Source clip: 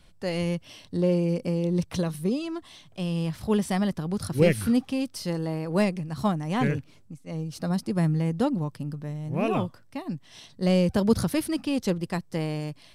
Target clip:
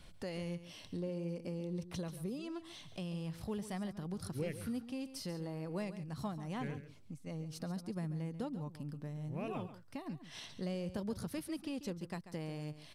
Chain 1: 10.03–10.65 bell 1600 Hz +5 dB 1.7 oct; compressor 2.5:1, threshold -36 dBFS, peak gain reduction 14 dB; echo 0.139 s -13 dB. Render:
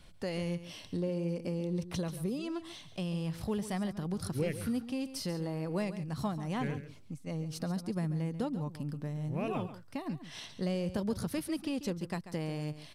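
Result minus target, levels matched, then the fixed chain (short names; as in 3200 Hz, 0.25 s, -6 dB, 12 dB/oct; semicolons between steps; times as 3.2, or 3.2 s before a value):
compressor: peak gain reduction -6 dB
10.03–10.65 bell 1600 Hz +5 dB 1.7 oct; compressor 2.5:1, threshold -46 dBFS, peak gain reduction 20 dB; echo 0.139 s -13 dB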